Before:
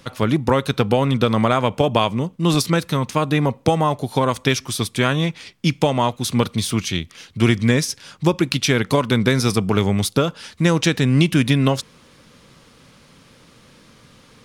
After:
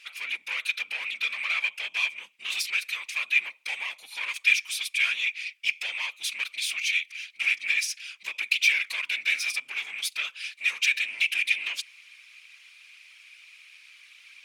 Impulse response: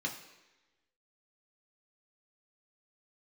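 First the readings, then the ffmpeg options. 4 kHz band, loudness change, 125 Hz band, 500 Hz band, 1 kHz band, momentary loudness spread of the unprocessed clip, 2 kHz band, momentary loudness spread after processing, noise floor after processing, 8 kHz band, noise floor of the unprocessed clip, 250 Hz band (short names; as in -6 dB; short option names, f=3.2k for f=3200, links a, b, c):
-4.0 dB, -7.0 dB, under -40 dB, under -35 dB, -23.0 dB, 5 LU, +2.5 dB, 10 LU, -56 dBFS, -6.5 dB, -51 dBFS, under -40 dB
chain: -af "asoftclip=type=tanh:threshold=-17dB,afftfilt=real='hypot(re,im)*cos(2*PI*random(0))':imag='hypot(re,im)*sin(2*PI*random(1))':win_size=512:overlap=0.75,highpass=f=2.4k:t=q:w=8.6"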